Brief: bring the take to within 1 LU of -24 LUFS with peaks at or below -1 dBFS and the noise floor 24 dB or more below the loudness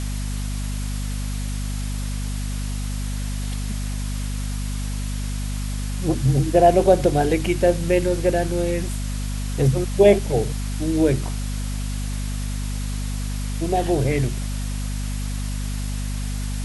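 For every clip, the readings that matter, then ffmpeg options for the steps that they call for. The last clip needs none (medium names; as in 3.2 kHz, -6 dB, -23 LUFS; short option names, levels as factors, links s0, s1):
hum 50 Hz; highest harmonic 250 Hz; hum level -24 dBFS; noise floor -26 dBFS; noise floor target -48 dBFS; loudness -23.5 LUFS; peak level -3.0 dBFS; loudness target -24.0 LUFS
-> -af "bandreject=f=50:t=h:w=6,bandreject=f=100:t=h:w=6,bandreject=f=150:t=h:w=6,bandreject=f=200:t=h:w=6,bandreject=f=250:t=h:w=6"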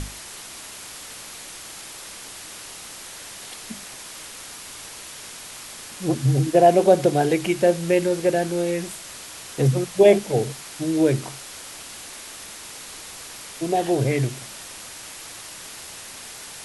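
hum not found; noise floor -39 dBFS; noise floor target -45 dBFS
-> -af "afftdn=nr=6:nf=-39"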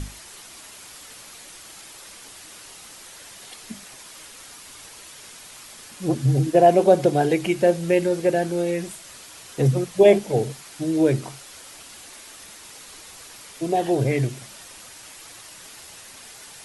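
noise floor -44 dBFS; noise floor target -45 dBFS
-> -af "afftdn=nr=6:nf=-44"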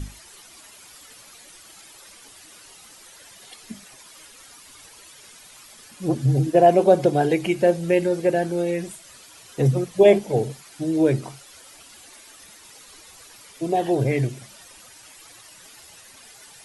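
noise floor -48 dBFS; loudness -20.5 LUFS; peak level -3.5 dBFS; loudness target -24.0 LUFS
-> -af "volume=0.668"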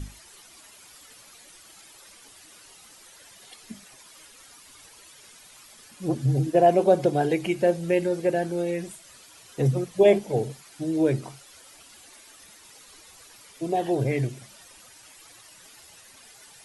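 loudness -24.0 LUFS; peak level -7.0 dBFS; noise floor -51 dBFS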